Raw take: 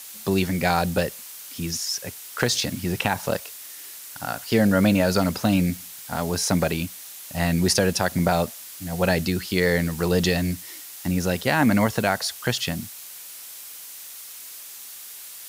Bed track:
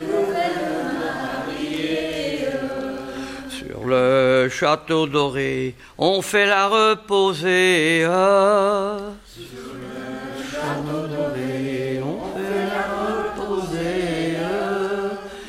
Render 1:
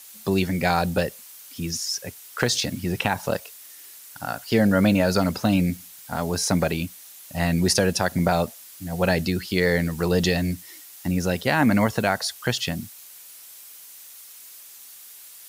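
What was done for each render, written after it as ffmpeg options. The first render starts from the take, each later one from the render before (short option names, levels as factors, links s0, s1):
-af "afftdn=nr=6:nf=-40"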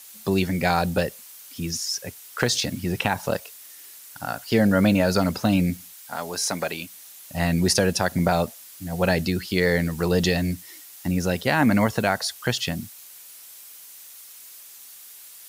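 -filter_complex "[0:a]asettb=1/sr,asplit=3[s0][s1][s2];[s0]atrim=end=5.934[s3];[s1]atrim=start=5.93:end=6.94,asetpts=PTS-STARTPTS,afade=t=in:d=0.004:c=qsin,afade=t=out:st=1.006:d=0.004:c=qsin,highpass=f=670:p=1[s4];[s2]atrim=start=6.936[s5];[s3][s4]acrossfade=d=0.004:c1=hsin:c2=qsin[s6];[s6][s5]acrossfade=d=0.004:c1=qsin:c2=hsin"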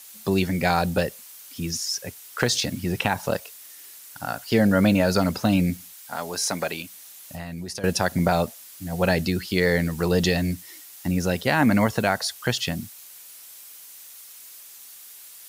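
-filter_complex "[0:a]asettb=1/sr,asplit=3[s0][s1][s2];[s0]atrim=end=6.814[s3];[s1]atrim=start=6.81:end=7.84,asetpts=PTS-STARTPTS,afade=t=in:d=0.004:c=qsin,afade=t=out:st=1.026:d=0.004:c=qsin,acompressor=threshold=0.0282:ratio=6:attack=3.2:release=140:knee=1:detection=peak[s4];[s2]atrim=start=7.836[s5];[s3][s4]acrossfade=d=0.004:c1=hsin:c2=qsin[s6];[s6][s5]acrossfade=d=0.004:c1=qsin:c2=hsin"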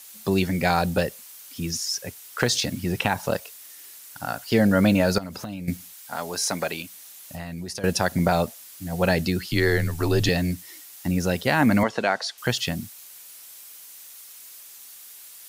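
-filter_complex "[0:a]asettb=1/sr,asplit=3[s0][s1][s2];[s0]atrim=end=5.184[s3];[s1]atrim=start=5.18:end=5.68,asetpts=PTS-STARTPTS,afade=t=in:d=0.004:c=qsin,afade=t=out:st=0.496:d=0.004:c=qsin,acompressor=threshold=0.0316:ratio=10:attack=3.2:release=140:knee=1:detection=peak[s4];[s2]atrim=start=5.676[s5];[s3][s4]acrossfade=d=0.004:c1=hsin:c2=qsin[s6];[s6][s5]acrossfade=d=0.004:c1=qsin:c2=hsin,asettb=1/sr,asplit=3[s7][s8][s9];[s7]atrim=end=9.484[s10];[s8]atrim=start=9.48:end=10.29,asetpts=PTS-STARTPTS,afade=t=in:d=0.004:c=qsin,afade=t=out:st=0.806:d=0.004:c=qsin,afreqshift=-71[s11];[s9]atrim=start=10.286[s12];[s10][s11]acrossfade=d=0.004:c1=hsin:c2=qsin[s13];[s13][s12]acrossfade=d=0.004:c1=qsin:c2=hsin,asettb=1/sr,asplit=3[s14][s15][s16];[s14]atrim=end=11.834[s17];[s15]atrim=start=11.83:end=12.38,asetpts=PTS-STARTPTS,afade=t=in:d=0.004:c=qsin,afade=t=out:st=0.546:d=0.004:c=qsin,highpass=270,lowpass=5400[s18];[s16]atrim=start=12.376[s19];[s17][s18]acrossfade=d=0.004:c1=hsin:c2=qsin[s20];[s20][s19]acrossfade=d=0.004:c1=qsin:c2=hsin"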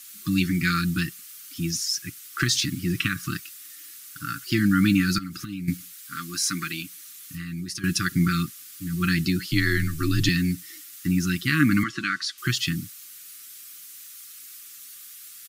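-af "afftfilt=real='re*(1-between(b*sr/4096,370,1100))':imag='im*(1-between(b*sr/4096,370,1100))':win_size=4096:overlap=0.75,aecho=1:1:6.6:0.46"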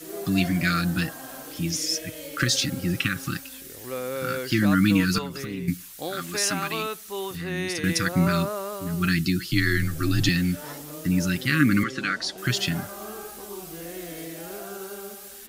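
-filter_complex "[1:a]volume=0.178[s0];[0:a][s0]amix=inputs=2:normalize=0"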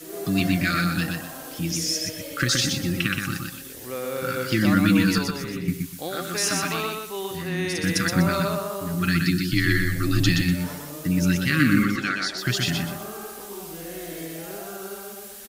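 -af "aecho=1:1:123|246|369|492:0.631|0.17|0.046|0.0124"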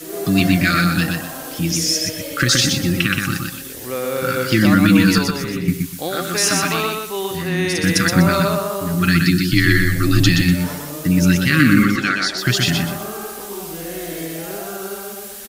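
-af "volume=2.24,alimiter=limit=0.794:level=0:latency=1"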